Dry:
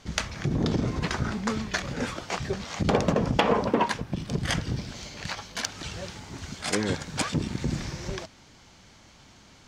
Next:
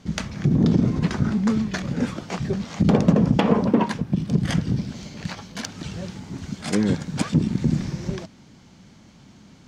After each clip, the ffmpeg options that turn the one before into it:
ffmpeg -i in.wav -af "equalizer=frequency=190:width_type=o:width=1.8:gain=13.5,volume=-2.5dB" out.wav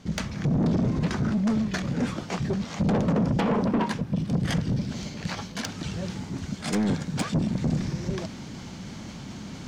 ffmpeg -i in.wav -af "areverse,acompressor=mode=upward:threshold=-27dB:ratio=2.5,areverse,asoftclip=type=tanh:threshold=-19dB" out.wav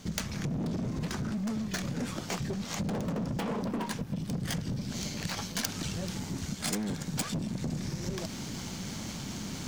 ffmpeg -i in.wav -af "aeval=exprs='0.119*(cos(1*acos(clip(val(0)/0.119,-1,1)))-cos(1*PI/2))+0.00422*(cos(8*acos(clip(val(0)/0.119,-1,1)))-cos(8*PI/2))':channel_layout=same,acompressor=threshold=-31dB:ratio=6,aemphasis=mode=production:type=50fm" out.wav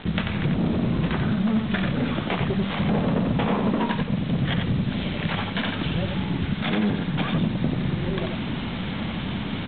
ffmpeg -i in.wav -af "aresample=8000,acrusher=bits=7:mix=0:aa=0.000001,aresample=44100,aecho=1:1:90:0.596,volume=9dB" out.wav

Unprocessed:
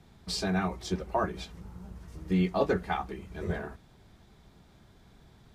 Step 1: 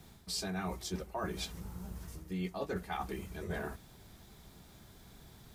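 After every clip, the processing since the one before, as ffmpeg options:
ffmpeg -i in.wav -af "aemphasis=mode=production:type=50fm,areverse,acompressor=threshold=-36dB:ratio=6,areverse,volume=1dB" out.wav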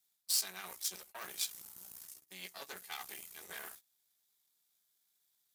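ffmpeg -i in.wav -af "aeval=exprs='0.0562*(cos(1*acos(clip(val(0)/0.0562,-1,1)))-cos(1*PI/2))+0.0178*(cos(2*acos(clip(val(0)/0.0562,-1,1)))-cos(2*PI/2))+0.00447*(cos(6*acos(clip(val(0)/0.0562,-1,1)))-cos(6*PI/2))+0.00251*(cos(7*acos(clip(val(0)/0.0562,-1,1)))-cos(7*PI/2))':channel_layout=same,agate=range=-19dB:threshold=-47dB:ratio=16:detection=peak,aderivative,volume=7.5dB" out.wav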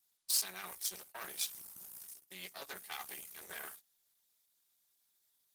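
ffmpeg -i in.wav -af "volume=2dB" -ar 48000 -c:a libopus -b:a 20k out.opus

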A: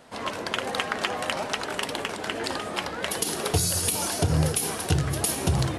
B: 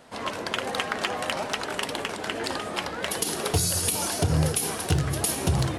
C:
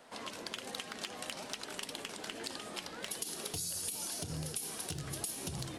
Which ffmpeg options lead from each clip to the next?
ffmpeg -i in.wav -af "volume=14dB,asoftclip=hard,volume=-14dB" out.wav
ffmpeg -i in.wav -filter_complex "[0:a]acrossover=split=290|3000[link_01][link_02][link_03];[link_02]acompressor=threshold=-41dB:ratio=4[link_04];[link_01][link_04][link_03]amix=inputs=3:normalize=0,equalizer=frequency=78:width_type=o:width=2.2:gain=-13.5,acompressor=threshold=-31dB:ratio=5,volume=-5dB" out.wav

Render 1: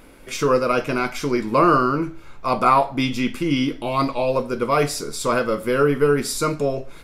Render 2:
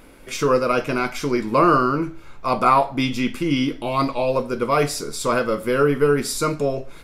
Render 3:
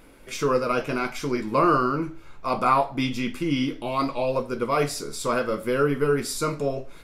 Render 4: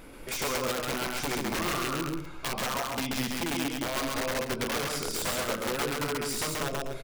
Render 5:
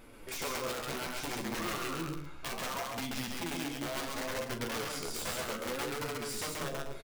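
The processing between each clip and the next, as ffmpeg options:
ffmpeg -i in.wav -af anull out.wav
ffmpeg -i in.wav -af "flanger=delay=5.6:depth=9.9:regen=-66:speed=0.68:shape=triangular" out.wav
ffmpeg -i in.wav -filter_complex "[0:a]acompressor=threshold=-32dB:ratio=10,aeval=exprs='(mod(26.6*val(0)+1,2)-1)/26.6':channel_layout=same,asplit=2[link_01][link_02];[link_02]aecho=0:1:134.1|247.8:0.794|0.251[link_03];[link_01][link_03]amix=inputs=2:normalize=0,volume=3dB" out.wav
ffmpeg -i in.wav -filter_complex "[0:a]flanger=delay=8.5:depth=5.5:regen=37:speed=0.65:shape=sinusoidal,asplit=2[link_01][link_02];[link_02]adelay=42,volume=-11dB[link_03];[link_01][link_03]amix=inputs=2:normalize=0,volume=-2.5dB" out.wav

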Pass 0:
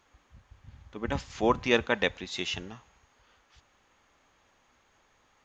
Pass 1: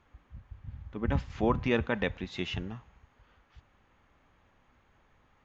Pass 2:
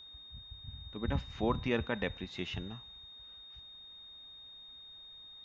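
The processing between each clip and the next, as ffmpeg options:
ffmpeg -i in.wav -filter_complex "[0:a]bass=frequency=250:gain=9,treble=frequency=4000:gain=-14,asplit=2[link_01][link_02];[link_02]alimiter=limit=-18dB:level=0:latency=1:release=29,volume=2.5dB[link_03];[link_01][link_03]amix=inputs=2:normalize=0,volume=-8.5dB" out.wav
ffmpeg -i in.wav -af "aeval=exprs='val(0)+0.00562*sin(2*PI*3700*n/s)':channel_layout=same,volume=-4.5dB" out.wav

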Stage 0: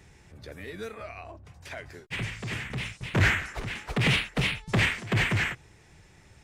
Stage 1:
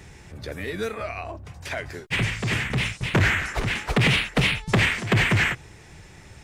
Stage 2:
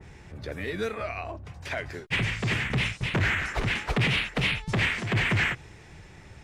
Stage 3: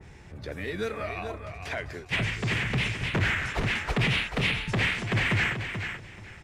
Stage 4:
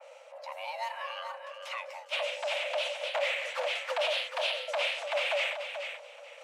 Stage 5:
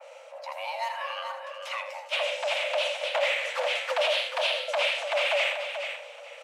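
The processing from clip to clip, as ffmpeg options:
ffmpeg -i in.wav -af "acompressor=threshold=-26dB:ratio=5,volume=9dB" out.wav
ffmpeg -i in.wav -af "highshelf=frequency=5400:gain=-10.5,alimiter=limit=-17dB:level=0:latency=1:release=80,adynamicequalizer=threshold=0.0112:dfrequency=2000:dqfactor=0.7:tfrequency=2000:tqfactor=0.7:attack=5:release=100:ratio=0.375:range=1.5:mode=boostabove:tftype=highshelf,volume=-1.5dB" out.wav
ffmpeg -i in.wav -af "aecho=1:1:434|868|1302:0.398|0.0796|0.0159,volume=-1dB" out.wav
ffmpeg -i in.wav -af "areverse,acompressor=mode=upward:threshold=-41dB:ratio=2.5,areverse,afreqshift=470,volume=-5dB" out.wav
ffmpeg -i in.wav -af "aecho=1:1:80:0.335,volume=4dB" out.wav

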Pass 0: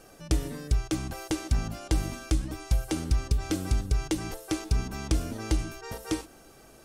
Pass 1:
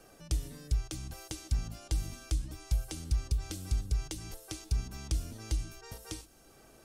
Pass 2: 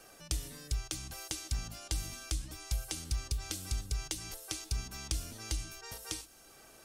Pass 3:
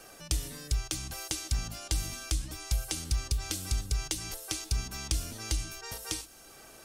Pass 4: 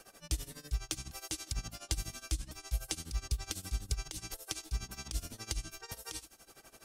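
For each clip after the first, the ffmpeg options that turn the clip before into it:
ffmpeg -i in.wav -filter_complex "[0:a]acrossover=split=140|3000[link_01][link_02][link_03];[link_02]acompressor=threshold=-50dB:ratio=2[link_04];[link_01][link_04][link_03]amix=inputs=3:normalize=0,volume=-4.5dB" out.wav
ffmpeg -i in.wav -af "tiltshelf=frequency=650:gain=-5" out.wav
ffmpeg -i in.wav -af "asoftclip=type=tanh:threshold=-18dB,volume=5dB" out.wav
ffmpeg -i in.wav -af "tremolo=f=12:d=0.87,volume=-2dB" out.wav

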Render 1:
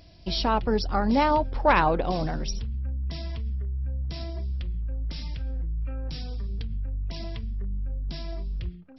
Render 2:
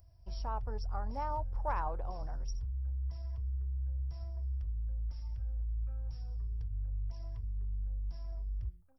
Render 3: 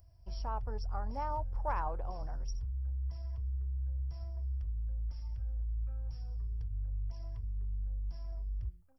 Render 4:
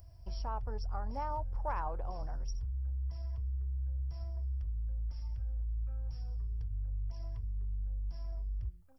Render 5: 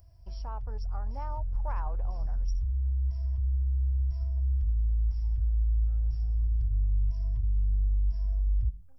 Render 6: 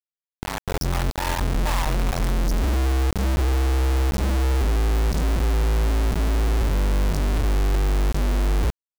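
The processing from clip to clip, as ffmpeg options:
ffmpeg -i in.wav -af "firequalizer=gain_entry='entry(110,0);entry(160,-19);entry(300,-20);entry(440,-14);entry(930,-7);entry(2200,-21);entry(3900,-28);entry(6100,-4);entry(8800,10)':delay=0.05:min_phase=1,volume=-6dB" out.wav
ffmpeg -i in.wav -af "bandreject=frequency=3800:width=12" out.wav
ffmpeg -i in.wav -af "acompressor=threshold=-52dB:ratio=1.5,volume=6.5dB" out.wav
ffmpeg -i in.wav -af "asubboost=boost=5:cutoff=130,volume=-2.5dB" out.wav
ffmpeg -i in.wav -af "acrusher=bits=4:mix=0:aa=0.000001,volume=6dB" out.wav

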